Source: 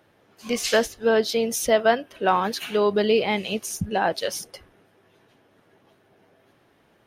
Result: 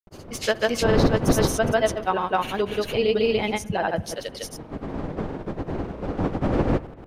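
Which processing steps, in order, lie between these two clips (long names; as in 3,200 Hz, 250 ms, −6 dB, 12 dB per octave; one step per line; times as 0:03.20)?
wind on the microphone 420 Hz −26 dBFS
granular cloud 100 ms, grains 20 per second, spray 278 ms, pitch spread up and down by 0 semitones
spring reverb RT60 1.1 s, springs 60 ms, DRR 19 dB
level −1 dB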